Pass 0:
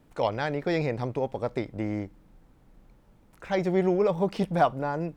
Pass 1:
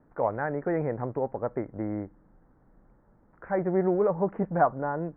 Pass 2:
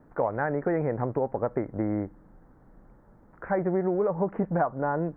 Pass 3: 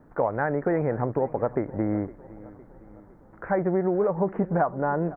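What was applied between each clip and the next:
Butterworth low-pass 1,800 Hz 48 dB per octave; low-shelf EQ 150 Hz −5 dB
downward compressor 5 to 1, threshold −28 dBFS, peak gain reduction 11 dB; level +5.5 dB
repeating echo 510 ms, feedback 53%, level −19.5 dB; level +2 dB

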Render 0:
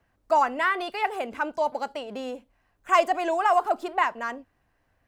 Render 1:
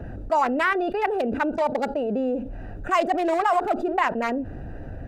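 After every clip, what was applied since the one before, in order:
adaptive Wiener filter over 41 samples
envelope flattener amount 70%
level −2 dB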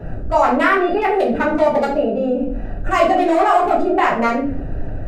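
rectangular room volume 57 cubic metres, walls mixed, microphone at 1.1 metres
level +1 dB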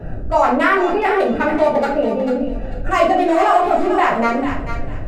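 feedback echo with a high-pass in the loop 444 ms, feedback 27%, high-pass 1,200 Hz, level −6.5 dB

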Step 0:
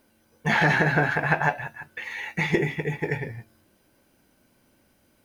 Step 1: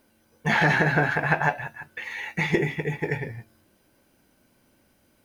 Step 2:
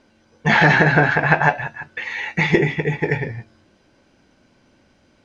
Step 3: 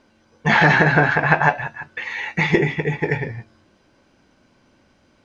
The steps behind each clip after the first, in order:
no processing that can be heard
low-pass filter 6,300 Hz 24 dB per octave; level +7 dB
parametric band 1,100 Hz +3.5 dB 0.5 octaves; level −1 dB

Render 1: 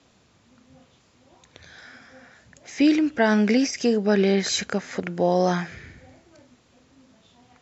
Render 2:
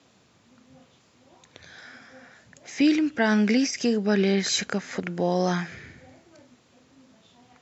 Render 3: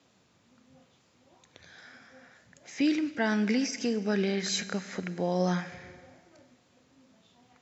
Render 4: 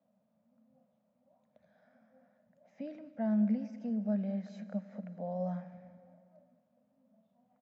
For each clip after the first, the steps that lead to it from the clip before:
high-pass filter 98 Hz; dynamic equaliser 590 Hz, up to −5 dB, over −33 dBFS, Q 0.85
tuned comb filter 180 Hz, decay 0.54 s, harmonics odd, mix 50%; four-comb reverb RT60 2 s, combs from 32 ms, DRR 14.5 dB
pair of resonant band-passes 360 Hz, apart 1.5 octaves; repeating echo 200 ms, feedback 59%, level −19 dB

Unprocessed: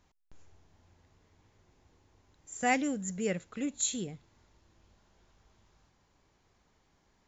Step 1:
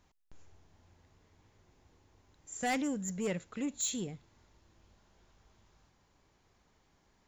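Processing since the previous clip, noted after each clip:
soft clipping −27 dBFS, distortion −11 dB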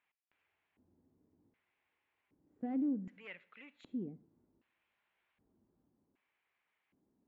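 auto-filter band-pass square 0.65 Hz 270–2,400 Hz
high-frequency loss of the air 400 metres
on a send at −21.5 dB: convolution reverb RT60 0.60 s, pre-delay 57 ms
on the sum: level +2 dB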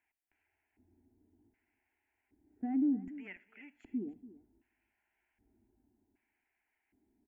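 low-shelf EQ 200 Hz +9.5 dB
phaser with its sweep stopped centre 780 Hz, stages 8
single-tap delay 286 ms −16.5 dB
level +1.5 dB

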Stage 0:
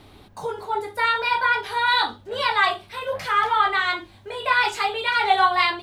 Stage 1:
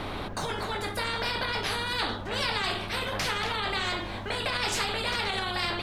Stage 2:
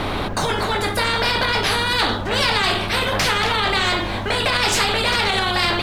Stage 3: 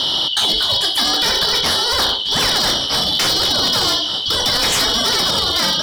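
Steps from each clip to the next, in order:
spectral tilt −4.5 dB per octave; brickwall limiter −16 dBFS, peak gain reduction 10.5 dB; every bin compressed towards the loudest bin 4 to 1
leveller curve on the samples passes 1; level +7.5 dB
band-splitting scrambler in four parts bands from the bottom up 3412; wave folding −13 dBFS; speech leveller 2 s; level +3 dB

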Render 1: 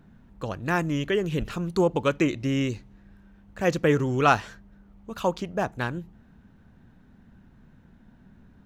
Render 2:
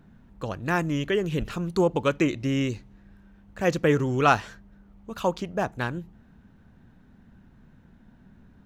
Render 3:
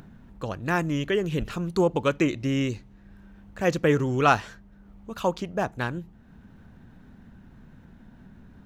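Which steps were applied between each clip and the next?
no processing that can be heard
upward compression, threshold −42 dBFS

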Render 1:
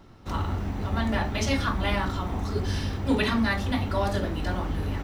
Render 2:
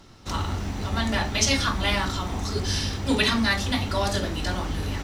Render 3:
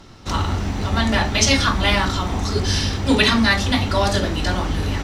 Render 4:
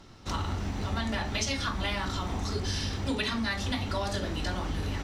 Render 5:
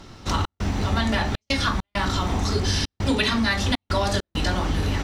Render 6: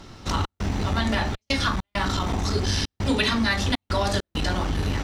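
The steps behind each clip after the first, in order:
parametric band 6,400 Hz +12.5 dB 2.3 octaves
high-shelf EQ 9,500 Hz −8 dB; level +6.5 dB
downward compressor, threshold −19 dBFS, peak gain reduction 8 dB; level −8 dB
gate pattern "xxx.xxxxx.xx.xxx" 100 BPM −60 dB; level +8.5 dB
saturating transformer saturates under 190 Hz

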